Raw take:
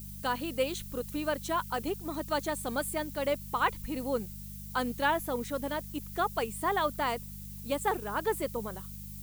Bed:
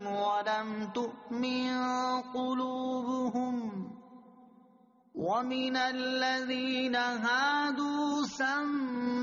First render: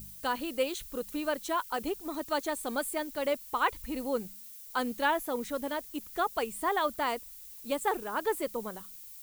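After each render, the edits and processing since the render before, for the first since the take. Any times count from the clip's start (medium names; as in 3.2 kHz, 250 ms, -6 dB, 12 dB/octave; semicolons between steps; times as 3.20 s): de-hum 50 Hz, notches 4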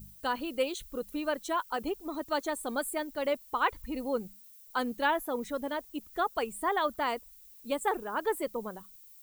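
noise reduction 9 dB, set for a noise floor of -48 dBFS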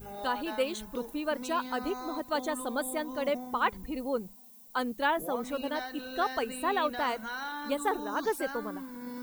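add bed -9 dB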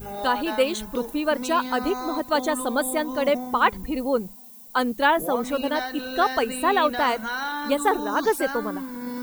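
trim +8.5 dB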